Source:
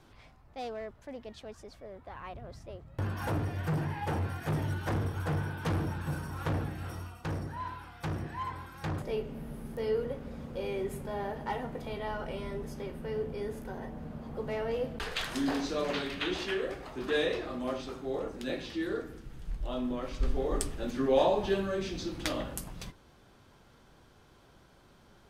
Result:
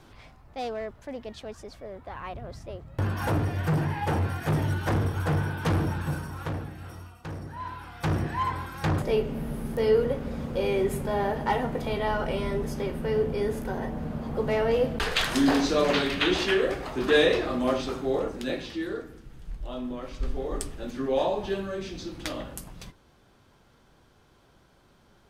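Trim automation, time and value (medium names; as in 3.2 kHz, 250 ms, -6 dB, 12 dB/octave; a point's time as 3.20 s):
6.00 s +6 dB
6.64 s -2 dB
7.36 s -2 dB
8.13 s +9 dB
18.00 s +9 dB
19.09 s -0.5 dB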